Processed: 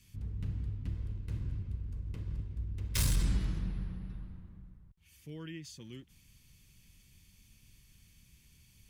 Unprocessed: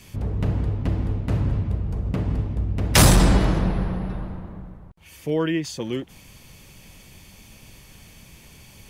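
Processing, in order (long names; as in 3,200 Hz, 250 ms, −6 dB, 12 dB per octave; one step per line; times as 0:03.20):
0:00.94–0:03.24: lower of the sound and its delayed copy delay 1.9 ms
guitar amp tone stack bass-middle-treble 6-0-2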